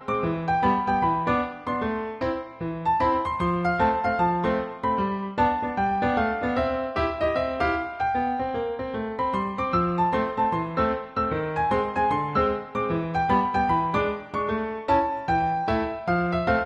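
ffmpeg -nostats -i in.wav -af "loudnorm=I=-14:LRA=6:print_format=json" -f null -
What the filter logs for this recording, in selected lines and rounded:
"input_i" : "-25.0",
"input_tp" : "-8.6",
"input_lra" : "1.1",
"input_thresh" : "-35.0",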